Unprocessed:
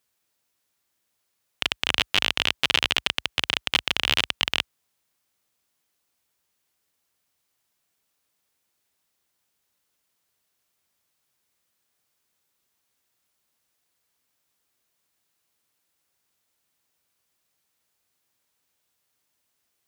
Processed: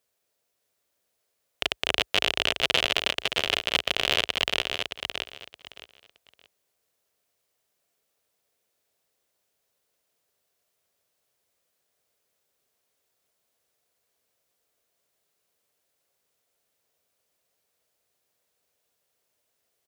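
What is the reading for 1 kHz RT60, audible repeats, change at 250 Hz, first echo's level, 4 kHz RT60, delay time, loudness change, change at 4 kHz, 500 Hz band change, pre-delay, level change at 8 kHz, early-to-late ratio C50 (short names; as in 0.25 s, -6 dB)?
none, 3, -1.0 dB, -6.0 dB, none, 0.619 s, -2.0 dB, -1.5 dB, +6.0 dB, none, -1.5 dB, none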